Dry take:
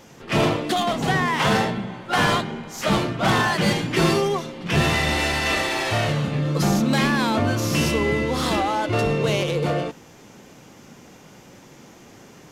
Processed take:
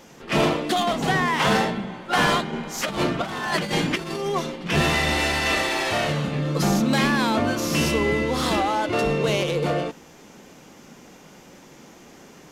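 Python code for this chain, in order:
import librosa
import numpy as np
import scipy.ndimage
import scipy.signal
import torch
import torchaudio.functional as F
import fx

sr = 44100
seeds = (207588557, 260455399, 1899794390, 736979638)

y = fx.peak_eq(x, sr, hz=110.0, db=-13.0, octaves=0.38)
y = fx.over_compress(y, sr, threshold_db=-24.0, ratio=-0.5, at=(2.53, 4.56))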